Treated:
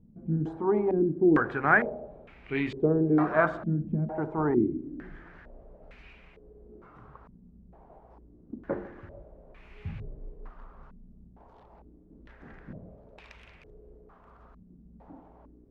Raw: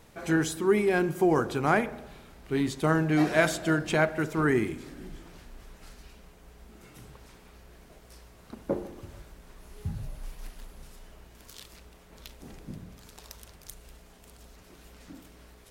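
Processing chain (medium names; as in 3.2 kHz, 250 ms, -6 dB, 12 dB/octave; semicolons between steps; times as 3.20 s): 9.87–10.30 s: send-on-delta sampling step -50 dBFS; de-hum 64.83 Hz, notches 6; step-sequenced low-pass 2.2 Hz 210–2400 Hz; trim -3 dB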